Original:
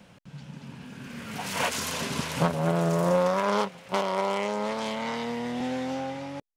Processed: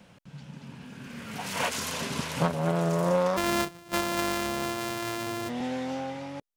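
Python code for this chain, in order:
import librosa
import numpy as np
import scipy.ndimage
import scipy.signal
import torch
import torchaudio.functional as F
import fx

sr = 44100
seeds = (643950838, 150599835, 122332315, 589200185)

y = fx.sample_sort(x, sr, block=128, at=(3.36, 5.48), fade=0.02)
y = y * librosa.db_to_amplitude(-1.5)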